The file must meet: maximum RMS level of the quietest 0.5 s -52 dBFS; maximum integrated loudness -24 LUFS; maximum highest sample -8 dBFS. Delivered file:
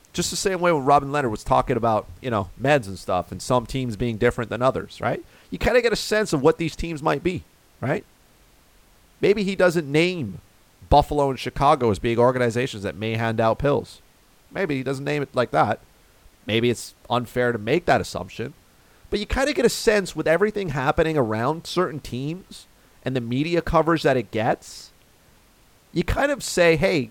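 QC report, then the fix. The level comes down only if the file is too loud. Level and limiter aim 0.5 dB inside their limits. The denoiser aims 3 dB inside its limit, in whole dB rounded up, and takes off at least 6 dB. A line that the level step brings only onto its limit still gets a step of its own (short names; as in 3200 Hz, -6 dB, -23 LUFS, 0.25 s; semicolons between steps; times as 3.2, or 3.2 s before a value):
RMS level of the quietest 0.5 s -56 dBFS: OK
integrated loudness -22.5 LUFS: fail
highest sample -4.5 dBFS: fail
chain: gain -2 dB; limiter -8.5 dBFS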